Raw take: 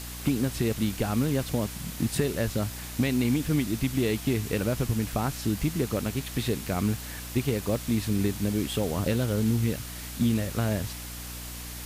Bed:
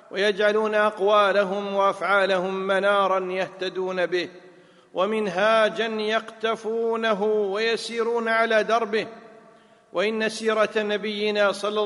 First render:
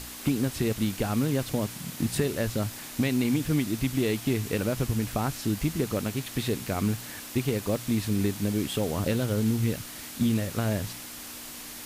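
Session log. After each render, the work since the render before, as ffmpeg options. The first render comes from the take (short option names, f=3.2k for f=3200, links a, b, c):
-af "bandreject=f=60:t=h:w=4,bandreject=f=120:t=h:w=4,bandreject=f=180:t=h:w=4"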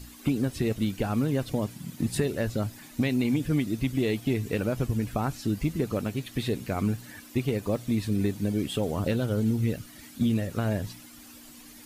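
-af "afftdn=nr=12:nf=-41"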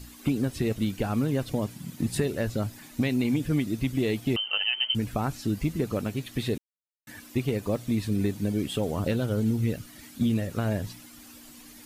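-filter_complex "[0:a]asettb=1/sr,asplit=3[a][b][c];[a]atrim=end=4.364[d];[b]atrim=start=4.36:end=4.95,asetpts=PTS-STARTPTS,afade=t=in:d=0.004:c=qsin,afade=t=out:st=0.586:d=0.004:c=qsin,lowpass=f=2.7k:t=q:w=0.5098,lowpass=f=2.7k:t=q:w=0.6013,lowpass=f=2.7k:t=q:w=0.9,lowpass=f=2.7k:t=q:w=2.563,afreqshift=-3200[e];[c]atrim=start=4.946[f];[d][e]acrossfade=d=0.004:c1=hsin:c2=qsin[g];[g][f]acrossfade=d=0.004:c1=qsin:c2=hsin,asplit=3[h][i][j];[h]atrim=end=6.58,asetpts=PTS-STARTPTS,afade=t=out:st=6.576:d=0.004:c=hsin[k];[i]atrim=start=6.58:end=7.07,asetpts=PTS-STARTPTS,volume=0[l];[j]atrim=start=7.07,asetpts=PTS-STARTPTS,afade=t=in:d=0.004:c=hsin[m];[k][l][m]concat=n=3:v=0:a=1"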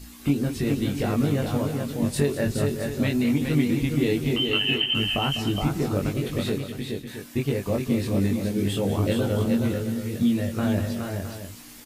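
-filter_complex "[0:a]asplit=2[a][b];[b]adelay=21,volume=-2dB[c];[a][c]amix=inputs=2:normalize=0,asplit=2[d][e];[e]aecho=0:1:201|379|419|547|666:0.251|0.106|0.596|0.106|0.266[f];[d][f]amix=inputs=2:normalize=0"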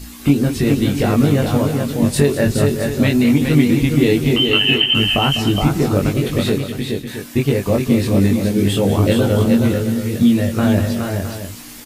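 -af "volume=9dB,alimiter=limit=-1dB:level=0:latency=1"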